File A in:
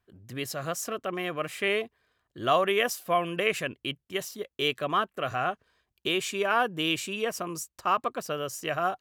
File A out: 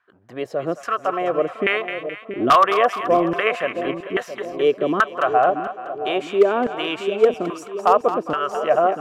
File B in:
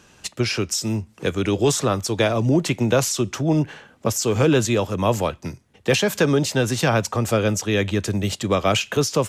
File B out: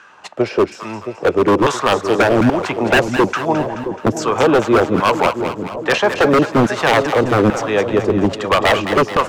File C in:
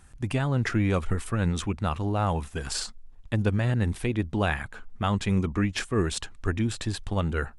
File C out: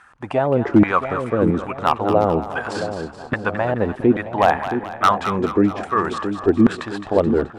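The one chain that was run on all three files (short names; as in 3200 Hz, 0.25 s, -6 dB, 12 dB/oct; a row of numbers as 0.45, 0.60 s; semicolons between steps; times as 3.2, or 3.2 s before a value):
LFO band-pass saw down 1.2 Hz 260–1500 Hz; wavefolder -22.5 dBFS; split-band echo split 740 Hz, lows 0.671 s, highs 0.214 s, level -9 dB; normalise peaks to -3 dBFS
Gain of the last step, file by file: +17.0, +16.5, +18.0 dB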